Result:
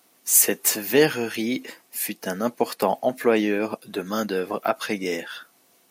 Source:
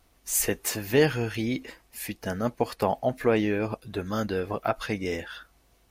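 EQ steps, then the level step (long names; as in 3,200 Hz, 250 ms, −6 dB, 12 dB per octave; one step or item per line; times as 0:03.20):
high-pass filter 180 Hz 24 dB per octave
high-shelf EQ 6,400 Hz +8.5 dB
+3.5 dB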